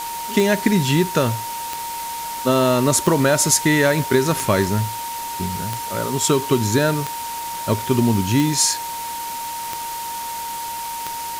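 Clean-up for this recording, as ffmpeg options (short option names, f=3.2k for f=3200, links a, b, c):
-af "adeclick=t=4,bandreject=f=930:w=30,afftdn=nr=30:nf=-29"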